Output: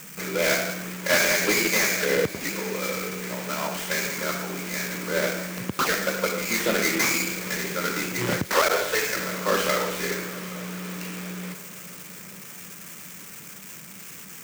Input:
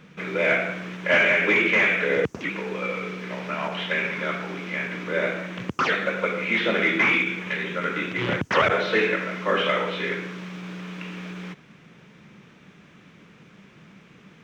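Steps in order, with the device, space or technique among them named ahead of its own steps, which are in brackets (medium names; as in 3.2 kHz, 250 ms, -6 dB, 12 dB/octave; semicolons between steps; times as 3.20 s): 8.46–9.15 s: high-pass 210 Hz -> 600 Hz 24 dB/octave; budget class-D amplifier (dead-time distortion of 0.13 ms; zero-crossing glitches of -25 dBFS); echo that smears into a reverb 844 ms, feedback 44%, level -16 dB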